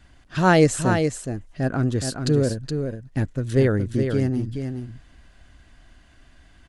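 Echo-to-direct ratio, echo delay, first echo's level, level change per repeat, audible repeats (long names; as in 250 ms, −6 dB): −6.5 dB, 420 ms, −6.5 dB, repeats not evenly spaced, 1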